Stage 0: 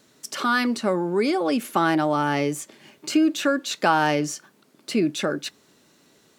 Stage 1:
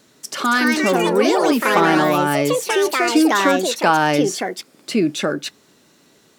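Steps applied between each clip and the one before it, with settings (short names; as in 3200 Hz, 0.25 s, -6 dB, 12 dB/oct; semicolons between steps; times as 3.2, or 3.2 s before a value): echoes that change speed 0.258 s, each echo +4 st, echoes 3; gain +4 dB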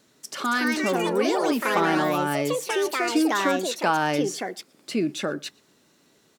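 outdoor echo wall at 20 m, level -27 dB; gain -7 dB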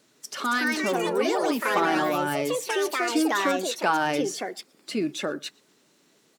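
bin magnitudes rounded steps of 15 dB; low shelf 160 Hz -9 dB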